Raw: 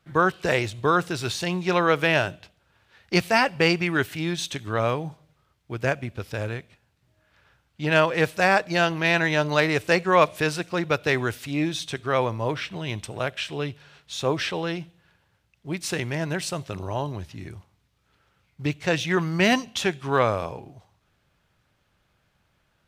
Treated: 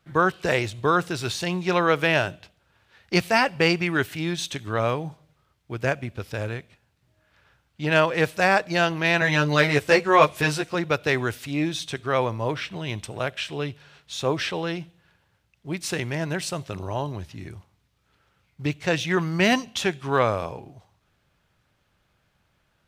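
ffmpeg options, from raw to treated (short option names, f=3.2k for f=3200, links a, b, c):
-filter_complex "[0:a]asettb=1/sr,asplit=3[a][b][c];[a]atrim=end=9.204[d];[b]atrim=start=9.2:end=10.75,asetpts=PTS-STARTPTS,afade=t=in:d=0.004:c=qsin,afade=t=out:st=1.546:d=0.004:c=qsin,asplit=2[e][f];[f]adelay=14,volume=-2dB[g];[e][g]amix=inputs=2:normalize=0,atrim=end_sample=68355[h];[c]atrim=start=10.746[i];[d][h]acrossfade=d=0.004:c1=hsin:c2=qsin[j];[j][i]acrossfade=d=0.004:c1=qsin:c2=hsin"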